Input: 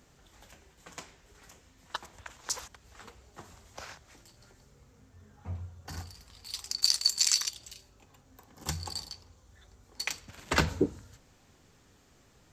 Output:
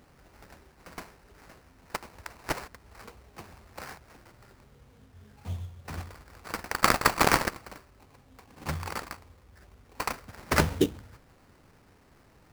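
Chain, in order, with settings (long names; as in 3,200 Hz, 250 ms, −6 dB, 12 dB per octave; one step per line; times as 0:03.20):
sample-rate reduction 3,400 Hz, jitter 20%
level +3 dB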